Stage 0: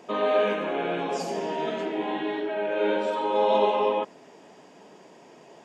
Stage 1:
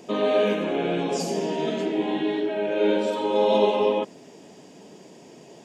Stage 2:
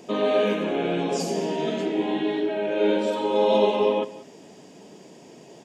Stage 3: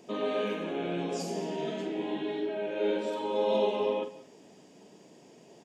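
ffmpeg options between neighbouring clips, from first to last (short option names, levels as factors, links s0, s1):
-af "equalizer=f=1200:w=0.5:g=-12.5,volume=2.82"
-af "aecho=1:1:183:0.133"
-filter_complex "[0:a]asplit=2[s0][s1];[s1]adelay=46,volume=0.355[s2];[s0][s2]amix=inputs=2:normalize=0,volume=0.376"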